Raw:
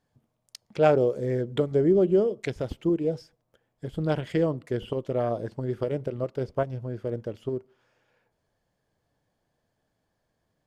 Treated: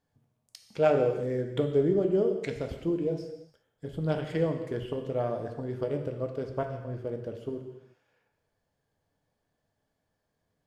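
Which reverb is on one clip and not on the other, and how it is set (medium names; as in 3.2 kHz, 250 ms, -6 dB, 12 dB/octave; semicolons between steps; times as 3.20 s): gated-style reverb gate 380 ms falling, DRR 3.5 dB; trim -4.5 dB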